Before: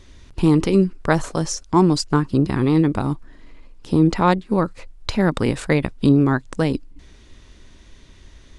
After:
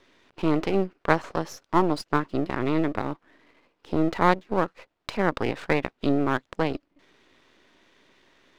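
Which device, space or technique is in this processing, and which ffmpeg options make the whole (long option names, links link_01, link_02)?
crystal radio: -af "highpass=340,lowpass=3100,aeval=exprs='if(lt(val(0),0),0.251*val(0),val(0))':channel_layout=same"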